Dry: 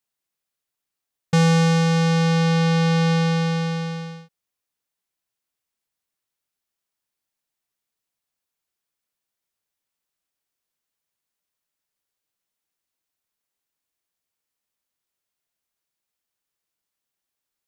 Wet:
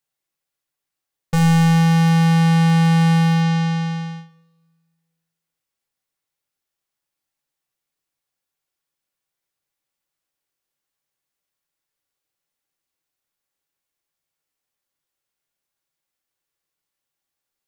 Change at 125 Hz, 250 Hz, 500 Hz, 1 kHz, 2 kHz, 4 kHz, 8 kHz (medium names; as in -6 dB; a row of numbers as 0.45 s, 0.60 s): +4.5 dB, no reading, -8.0 dB, +3.5 dB, +1.0 dB, -0.5 dB, +0.5 dB